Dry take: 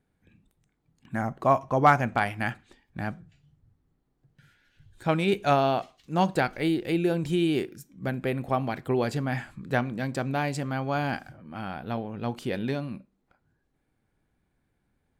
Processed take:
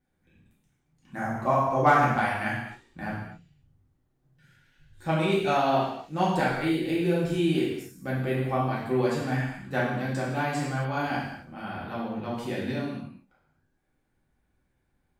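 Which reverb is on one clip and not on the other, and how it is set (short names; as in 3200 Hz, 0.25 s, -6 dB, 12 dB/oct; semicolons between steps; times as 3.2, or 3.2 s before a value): non-linear reverb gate 0.3 s falling, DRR -7.5 dB; gain -7.5 dB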